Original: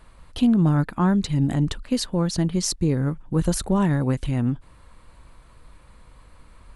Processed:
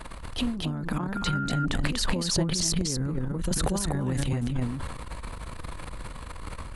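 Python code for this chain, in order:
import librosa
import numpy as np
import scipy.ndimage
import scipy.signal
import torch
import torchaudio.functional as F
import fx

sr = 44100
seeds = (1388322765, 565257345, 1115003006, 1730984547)

y = fx.over_compress(x, sr, threshold_db=-30.0, ratio=-1.0)
y = y + 10.0 ** (-4.0 / 20.0) * np.pad(y, (int(242 * sr / 1000.0), 0))[:len(y)]
y = fx.dmg_tone(y, sr, hz=1400.0, level_db=-33.0, at=(1.15, 1.64), fade=0.02)
y = fx.transient(y, sr, attack_db=-11, sustain_db=11)
y = fx.band_squash(y, sr, depth_pct=70, at=(3.51, 4.33))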